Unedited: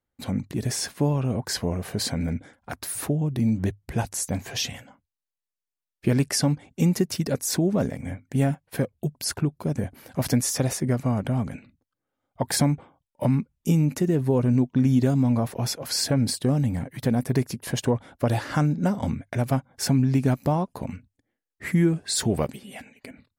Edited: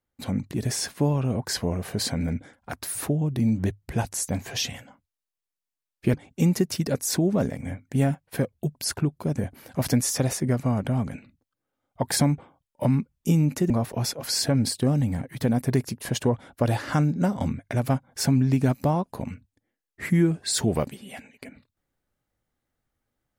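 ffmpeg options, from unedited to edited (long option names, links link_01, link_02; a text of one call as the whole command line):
ffmpeg -i in.wav -filter_complex "[0:a]asplit=3[link_01][link_02][link_03];[link_01]atrim=end=6.142[link_04];[link_02]atrim=start=6.538:end=14.102[link_05];[link_03]atrim=start=15.318[link_06];[link_04][link_05]acrossfade=duration=0.004:curve1=hsin:curve2=hsin[link_07];[link_07][link_06]acrossfade=duration=0.004:curve1=hsin:curve2=hsin" out.wav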